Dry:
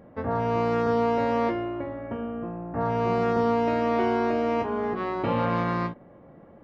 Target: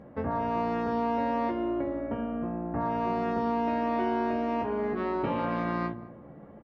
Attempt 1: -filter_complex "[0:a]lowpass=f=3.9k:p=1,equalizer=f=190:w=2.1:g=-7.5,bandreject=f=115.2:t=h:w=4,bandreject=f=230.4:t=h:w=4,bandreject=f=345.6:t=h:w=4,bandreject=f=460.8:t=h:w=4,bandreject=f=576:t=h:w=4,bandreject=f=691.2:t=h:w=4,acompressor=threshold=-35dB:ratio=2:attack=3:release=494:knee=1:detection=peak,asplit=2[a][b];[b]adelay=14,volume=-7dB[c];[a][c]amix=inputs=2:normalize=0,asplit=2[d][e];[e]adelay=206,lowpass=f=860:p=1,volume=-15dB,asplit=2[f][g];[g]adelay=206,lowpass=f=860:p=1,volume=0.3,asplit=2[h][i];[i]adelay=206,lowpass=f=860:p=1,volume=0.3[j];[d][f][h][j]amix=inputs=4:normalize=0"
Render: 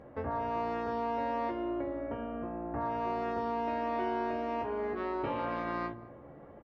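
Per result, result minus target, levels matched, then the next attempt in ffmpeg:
compressor: peak gain reduction +3 dB; 250 Hz band -3.0 dB
-filter_complex "[0:a]lowpass=f=3.9k:p=1,equalizer=f=190:w=2.1:g=-7.5,bandreject=f=115.2:t=h:w=4,bandreject=f=230.4:t=h:w=4,bandreject=f=345.6:t=h:w=4,bandreject=f=460.8:t=h:w=4,bandreject=f=576:t=h:w=4,bandreject=f=691.2:t=h:w=4,acompressor=threshold=-27dB:ratio=2:attack=3:release=494:knee=1:detection=peak,asplit=2[a][b];[b]adelay=14,volume=-7dB[c];[a][c]amix=inputs=2:normalize=0,asplit=2[d][e];[e]adelay=206,lowpass=f=860:p=1,volume=-15dB,asplit=2[f][g];[g]adelay=206,lowpass=f=860:p=1,volume=0.3,asplit=2[h][i];[i]adelay=206,lowpass=f=860:p=1,volume=0.3[j];[d][f][h][j]amix=inputs=4:normalize=0"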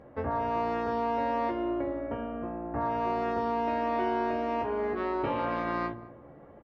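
250 Hz band -3.0 dB
-filter_complex "[0:a]lowpass=f=3.9k:p=1,equalizer=f=190:w=2.1:g=3.5,bandreject=f=115.2:t=h:w=4,bandreject=f=230.4:t=h:w=4,bandreject=f=345.6:t=h:w=4,bandreject=f=460.8:t=h:w=4,bandreject=f=576:t=h:w=4,bandreject=f=691.2:t=h:w=4,acompressor=threshold=-27dB:ratio=2:attack=3:release=494:knee=1:detection=peak,asplit=2[a][b];[b]adelay=14,volume=-7dB[c];[a][c]amix=inputs=2:normalize=0,asplit=2[d][e];[e]adelay=206,lowpass=f=860:p=1,volume=-15dB,asplit=2[f][g];[g]adelay=206,lowpass=f=860:p=1,volume=0.3,asplit=2[h][i];[i]adelay=206,lowpass=f=860:p=1,volume=0.3[j];[d][f][h][j]amix=inputs=4:normalize=0"

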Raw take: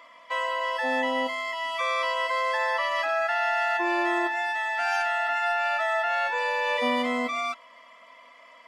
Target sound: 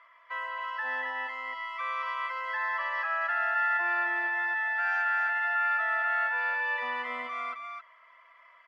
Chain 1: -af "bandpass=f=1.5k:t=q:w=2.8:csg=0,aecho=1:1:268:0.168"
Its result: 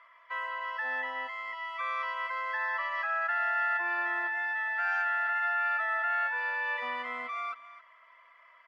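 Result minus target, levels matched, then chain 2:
echo-to-direct -10.5 dB
-af "bandpass=f=1.5k:t=q:w=2.8:csg=0,aecho=1:1:268:0.562"

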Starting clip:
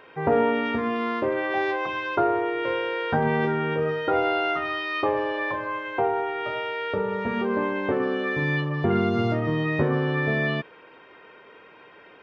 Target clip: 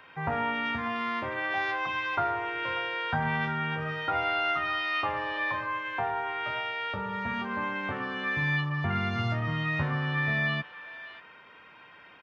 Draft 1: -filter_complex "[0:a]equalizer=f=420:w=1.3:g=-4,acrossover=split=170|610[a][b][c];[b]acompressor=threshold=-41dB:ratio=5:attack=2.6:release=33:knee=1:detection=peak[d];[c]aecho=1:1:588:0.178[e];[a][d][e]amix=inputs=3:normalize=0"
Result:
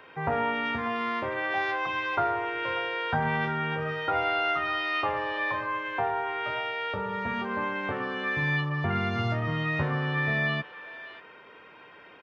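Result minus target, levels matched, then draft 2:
500 Hz band +3.5 dB
-filter_complex "[0:a]equalizer=f=420:w=1.3:g=-13.5,acrossover=split=170|610[a][b][c];[b]acompressor=threshold=-41dB:ratio=5:attack=2.6:release=33:knee=1:detection=peak[d];[c]aecho=1:1:588:0.178[e];[a][d][e]amix=inputs=3:normalize=0"

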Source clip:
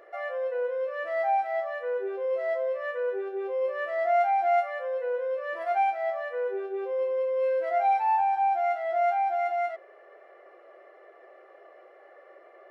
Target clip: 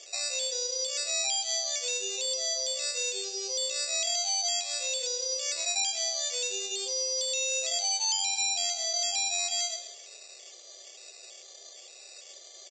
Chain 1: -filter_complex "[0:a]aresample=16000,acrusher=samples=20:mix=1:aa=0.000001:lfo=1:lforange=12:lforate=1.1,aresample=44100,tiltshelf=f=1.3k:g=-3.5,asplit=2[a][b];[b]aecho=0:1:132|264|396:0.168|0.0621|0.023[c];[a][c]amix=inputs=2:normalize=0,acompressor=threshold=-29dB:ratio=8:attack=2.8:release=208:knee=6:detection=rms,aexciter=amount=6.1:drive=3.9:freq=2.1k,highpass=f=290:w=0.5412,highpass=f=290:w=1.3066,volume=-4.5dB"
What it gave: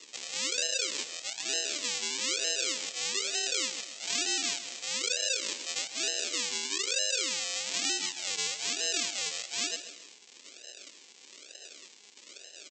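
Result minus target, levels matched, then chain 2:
decimation with a swept rate: distortion +30 dB; 2000 Hz band +5.5 dB
-filter_complex "[0:a]aresample=16000,acrusher=samples=4:mix=1:aa=0.000001:lfo=1:lforange=2.4:lforate=1.1,aresample=44100,tiltshelf=f=1.3k:g=-3.5,asplit=2[a][b];[b]aecho=0:1:132|264|396:0.168|0.0621|0.023[c];[a][c]amix=inputs=2:normalize=0,acompressor=threshold=-29dB:ratio=8:attack=2.8:release=208:knee=6:detection=rms,equalizer=f=1.7k:w=1:g=-8,aexciter=amount=6.1:drive=3.9:freq=2.1k,highpass=f=290:w=0.5412,highpass=f=290:w=1.3066,volume=-4.5dB"

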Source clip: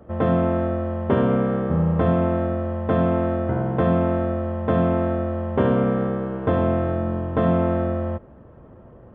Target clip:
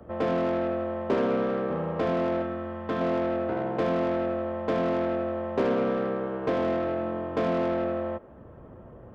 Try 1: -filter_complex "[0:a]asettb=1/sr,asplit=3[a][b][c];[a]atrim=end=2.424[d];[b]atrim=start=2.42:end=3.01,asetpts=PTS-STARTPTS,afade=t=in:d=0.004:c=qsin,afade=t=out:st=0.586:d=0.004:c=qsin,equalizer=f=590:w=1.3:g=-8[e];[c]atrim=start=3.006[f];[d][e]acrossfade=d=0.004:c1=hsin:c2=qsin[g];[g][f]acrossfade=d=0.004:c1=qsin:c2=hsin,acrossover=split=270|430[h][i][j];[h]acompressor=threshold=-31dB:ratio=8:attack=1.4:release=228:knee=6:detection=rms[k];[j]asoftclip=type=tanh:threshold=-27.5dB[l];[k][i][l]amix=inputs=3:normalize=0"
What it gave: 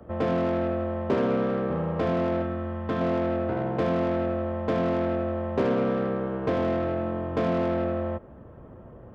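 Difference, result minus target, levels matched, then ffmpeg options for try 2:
compressor: peak gain reduction -9 dB
-filter_complex "[0:a]asettb=1/sr,asplit=3[a][b][c];[a]atrim=end=2.424[d];[b]atrim=start=2.42:end=3.01,asetpts=PTS-STARTPTS,afade=t=in:d=0.004:c=qsin,afade=t=out:st=0.586:d=0.004:c=qsin,equalizer=f=590:w=1.3:g=-8[e];[c]atrim=start=3.006[f];[d][e]acrossfade=d=0.004:c1=hsin:c2=qsin[g];[g][f]acrossfade=d=0.004:c1=qsin:c2=hsin,acrossover=split=270|430[h][i][j];[h]acompressor=threshold=-41.5dB:ratio=8:attack=1.4:release=228:knee=6:detection=rms[k];[j]asoftclip=type=tanh:threshold=-27.5dB[l];[k][i][l]amix=inputs=3:normalize=0"

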